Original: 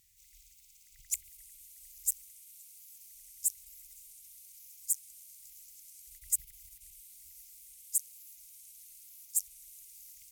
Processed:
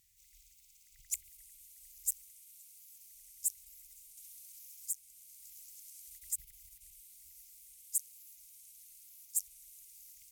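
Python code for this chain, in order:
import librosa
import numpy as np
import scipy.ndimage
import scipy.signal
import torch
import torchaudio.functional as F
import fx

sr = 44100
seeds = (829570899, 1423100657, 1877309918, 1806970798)

y = fx.band_squash(x, sr, depth_pct=40, at=(4.17, 6.38))
y = F.gain(torch.from_numpy(y), -3.0).numpy()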